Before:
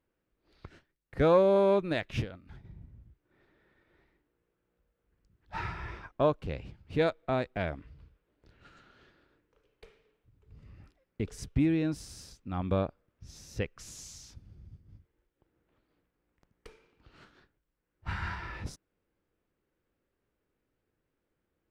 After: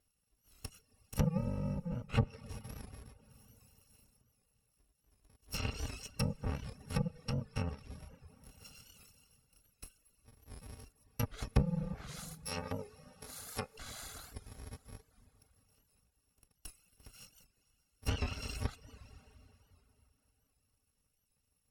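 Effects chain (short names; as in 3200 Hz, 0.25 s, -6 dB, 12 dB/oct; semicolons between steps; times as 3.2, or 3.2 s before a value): FFT order left unsorted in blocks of 128 samples; treble ducked by the level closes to 540 Hz, closed at -25.5 dBFS; 12.08–13.76 tone controls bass -13 dB, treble +5 dB; plate-style reverb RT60 3.5 s, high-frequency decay 0.85×, DRR 10.5 dB; reverb removal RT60 0.58 s; record warp 78 rpm, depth 100 cents; gain +4 dB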